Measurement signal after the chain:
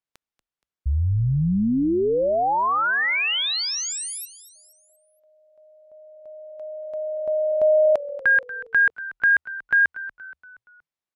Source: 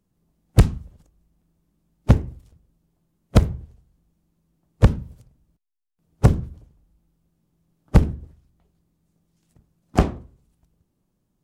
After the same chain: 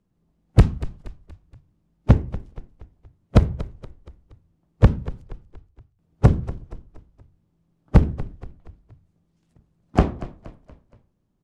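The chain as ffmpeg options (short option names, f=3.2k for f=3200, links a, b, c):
-filter_complex "[0:a]aemphasis=mode=reproduction:type=50fm,asplit=5[a][b][c][d][e];[b]adelay=236,afreqshift=-41,volume=-16dB[f];[c]adelay=472,afreqshift=-82,volume=-22.6dB[g];[d]adelay=708,afreqshift=-123,volume=-29.1dB[h];[e]adelay=944,afreqshift=-164,volume=-35.7dB[i];[a][f][g][h][i]amix=inputs=5:normalize=0"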